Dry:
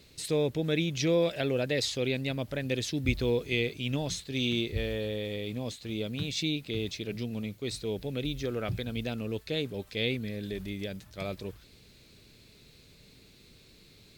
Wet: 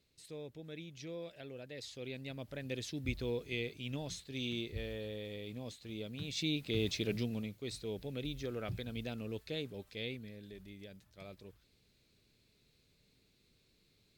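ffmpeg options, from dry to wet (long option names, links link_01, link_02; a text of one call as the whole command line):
ffmpeg -i in.wav -af "volume=1dB,afade=type=in:start_time=1.71:duration=1.02:silence=0.334965,afade=type=in:start_time=6.2:duration=0.84:silence=0.298538,afade=type=out:start_time=7.04:duration=0.48:silence=0.375837,afade=type=out:start_time=9.42:duration=1.03:silence=0.421697" out.wav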